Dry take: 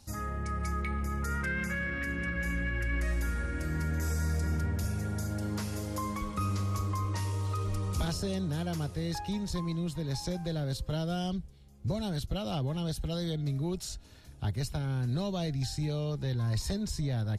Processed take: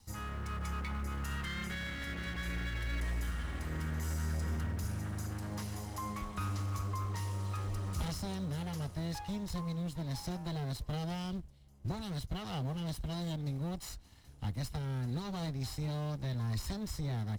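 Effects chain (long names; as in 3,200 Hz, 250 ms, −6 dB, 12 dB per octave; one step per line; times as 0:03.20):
lower of the sound and its delayed copy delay 0.99 ms
in parallel at −10.5 dB: floating-point word with a short mantissa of 2 bits
on the sum: level −6.5 dB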